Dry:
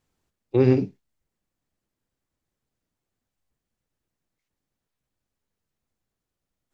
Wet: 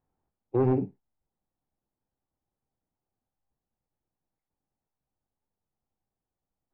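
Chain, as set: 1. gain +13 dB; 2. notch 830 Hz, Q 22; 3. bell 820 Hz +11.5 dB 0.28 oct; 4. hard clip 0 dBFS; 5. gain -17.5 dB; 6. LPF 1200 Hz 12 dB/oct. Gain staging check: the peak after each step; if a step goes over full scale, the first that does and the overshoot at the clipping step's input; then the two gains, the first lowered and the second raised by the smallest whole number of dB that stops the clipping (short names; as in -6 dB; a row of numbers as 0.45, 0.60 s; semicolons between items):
+6.5, +6.5, +6.5, 0.0, -17.5, -17.0 dBFS; step 1, 6.5 dB; step 1 +6 dB, step 5 -10.5 dB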